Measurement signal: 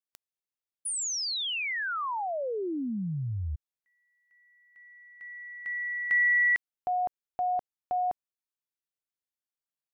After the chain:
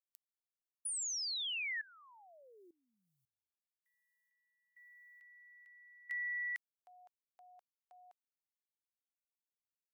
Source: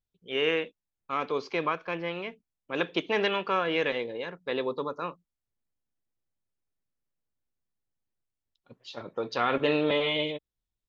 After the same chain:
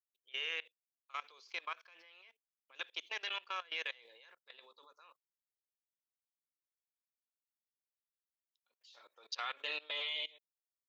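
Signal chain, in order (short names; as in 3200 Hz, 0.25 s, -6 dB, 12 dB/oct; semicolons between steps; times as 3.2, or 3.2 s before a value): HPF 500 Hz 12 dB/oct; differentiator; level quantiser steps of 22 dB; gain +5 dB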